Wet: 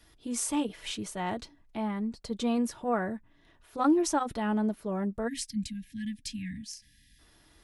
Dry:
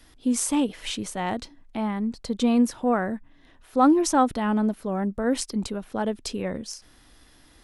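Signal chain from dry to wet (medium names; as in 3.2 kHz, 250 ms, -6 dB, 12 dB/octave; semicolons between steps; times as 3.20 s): comb of notches 260 Hz; spectral selection erased 5.28–7.19 s, 290–1600 Hz; trim -4 dB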